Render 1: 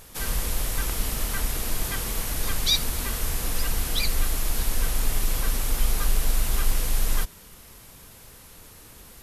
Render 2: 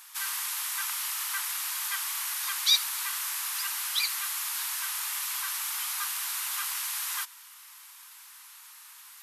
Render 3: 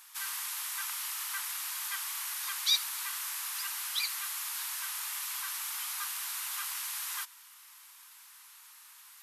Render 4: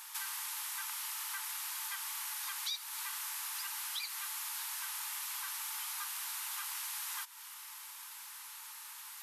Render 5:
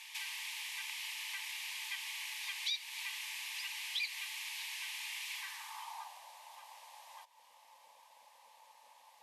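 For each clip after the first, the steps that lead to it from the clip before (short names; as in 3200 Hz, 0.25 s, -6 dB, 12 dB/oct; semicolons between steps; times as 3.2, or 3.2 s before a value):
steep high-pass 920 Hz 48 dB/oct
crackle 69/s -55 dBFS; gain -4.5 dB
compressor 4:1, threshold -45 dBFS, peak gain reduction 18.5 dB; small resonant body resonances 550/870 Hz, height 9 dB, ringing for 45 ms; gain +5.5 dB
band-pass sweep 2300 Hz -> 520 Hz, 5.33–6.27; fixed phaser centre 370 Hz, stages 6; gain +12.5 dB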